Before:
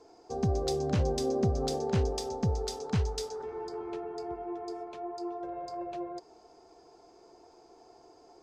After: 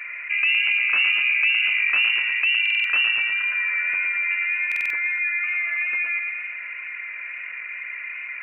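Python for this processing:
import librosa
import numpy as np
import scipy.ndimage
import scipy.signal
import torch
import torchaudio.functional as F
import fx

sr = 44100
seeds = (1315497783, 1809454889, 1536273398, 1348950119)

y = fx.echo_feedback(x, sr, ms=113, feedback_pct=48, wet_db=-6.5)
y = fx.freq_invert(y, sr, carrier_hz=2800)
y = fx.highpass(y, sr, hz=200.0, slope=6)
y = fx.peak_eq(y, sr, hz=1500.0, db=14.0, octaves=1.8)
y = fx.wow_flutter(y, sr, seeds[0], rate_hz=2.1, depth_cents=17.0)
y = fx.peak_eq(y, sr, hz=320.0, db=2.0, octaves=2.1)
y = fx.buffer_glitch(y, sr, at_s=(2.61, 4.67), block=2048, repeats=4)
y = fx.env_flatten(y, sr, amount_pct=50)
y = y * 10.0 ** (-2.5 / 20.0)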